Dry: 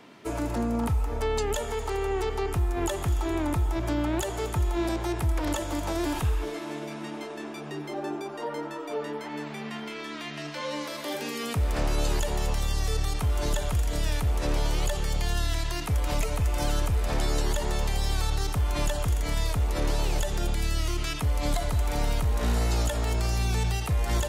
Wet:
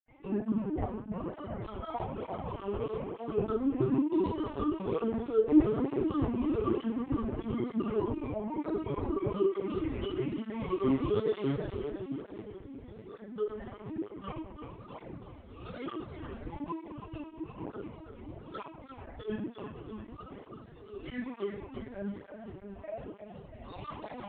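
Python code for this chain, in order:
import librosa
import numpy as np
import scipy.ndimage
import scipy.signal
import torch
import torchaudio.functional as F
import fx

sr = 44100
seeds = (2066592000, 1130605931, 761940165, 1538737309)

y = fx.dereverb_blind(x, sr, rt60_s=0.84)
y = fx.low_shelf(y, sr, hz=170.0, db=5.5)
y = fx.over_compress(y, sr, threshold_db=-29.0, ratio=-0.5)
y = fx.vowel_filter(y, sr, vowel='u')
y = fx.granulator(y, sr, seeds[0], grain_ms=100.0, per_s=20.0, spray_ms=100.0, spread_st=7)
y = fx.air_absorb(y, sr, metres=61.0)
y = fx.echo_split(y, sr, split_hz=400.0, low_ms=606, high_ms=336, feedback_pct=52, wet_db=-7.5)
y = fx.room_shoebox(y, sr, seeds[1], volume_m3=1000.0, walls='furnished', distance_m=7.1)
y = fx.lpc_vocoder(y, sr, seeds[2], excitation='pitch_kept', order=10)
y = fx.flanger_cancel(y, sr, hz=1.1, depth_ms=6.9)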